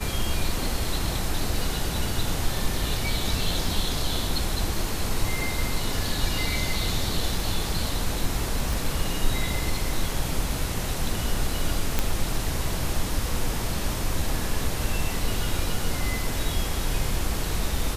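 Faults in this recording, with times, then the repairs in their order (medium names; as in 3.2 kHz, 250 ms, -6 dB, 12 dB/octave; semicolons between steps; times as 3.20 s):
8.73 s: pop
11.99 s: pop -7 dBFS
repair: de-click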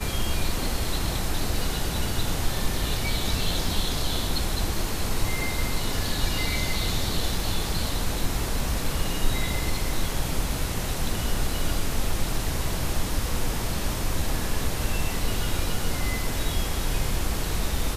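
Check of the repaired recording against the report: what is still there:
8.73 s: pop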